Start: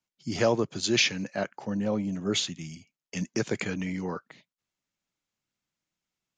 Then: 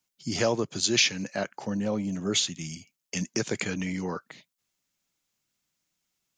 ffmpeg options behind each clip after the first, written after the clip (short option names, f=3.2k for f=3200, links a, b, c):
-filter_complex "[0:a]highshelf=f=4.7k:g=10,asplit=2[a][b];[b]acompressor=threshold=-32dB:ratio=6,volume=1dB[c];[a][c]amix=inputs=2:normalize=0,volume=-4dB"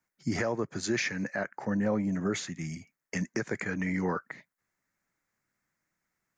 -af "highshelf=f=2.4k:t=q:w=3:g=-8.5,alimiter=limit=-21.5dB:level=0:latency=1:release=423,volume=2dB"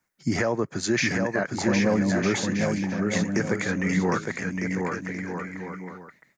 -af "aecho=1:1:760|1254|1575|1784|1919:0.631|0.398|0.251|0.158|0.1,volume=5.5dB"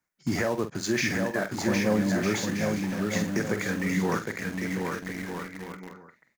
-filter_complex "[0:a]asplit=2[a][b];[b]acrusher=bits=4:mix=0:aa=0.000001,volume=-6dB[c];[a][c]amix=inputs=2:normalize=0,asplit=2[d][e];[e]adelay=47,volume=-10dB[f];[d][f]amix=inputs=2:normalize=0,volume=-6.5dB"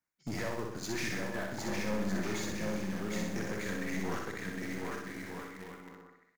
-af "aeval=exprs='(tanh(20*val(0)+0.55)-tanh(0.55))/20':c=same,aecho=1:1:62|124|186|248|310|372|434:0.631|0.334|0.177|0.0939|0.0498|0.0264|0.014,volume=-6dB"